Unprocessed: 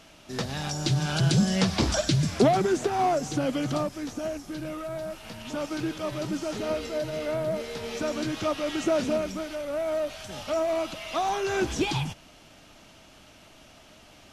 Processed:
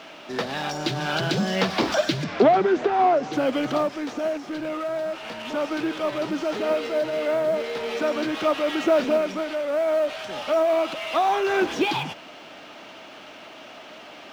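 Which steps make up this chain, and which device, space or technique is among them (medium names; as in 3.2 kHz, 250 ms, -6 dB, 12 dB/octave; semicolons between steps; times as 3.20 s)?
phone line with mismatched companding (band-pass 320–3300 Hz; companding laws mixed up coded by mu); 2.24–3.33 s: distance through air 120 m; trim +5.5 dB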